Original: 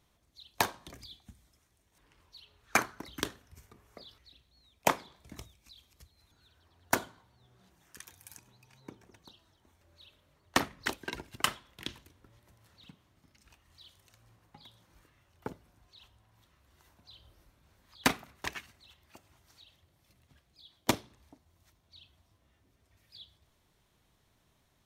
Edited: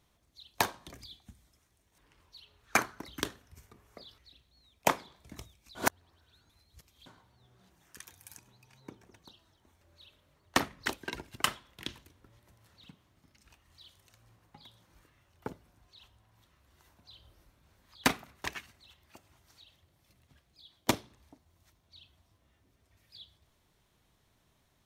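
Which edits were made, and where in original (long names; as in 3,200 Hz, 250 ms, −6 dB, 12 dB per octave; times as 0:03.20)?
0:05.75–0:07.06: reverse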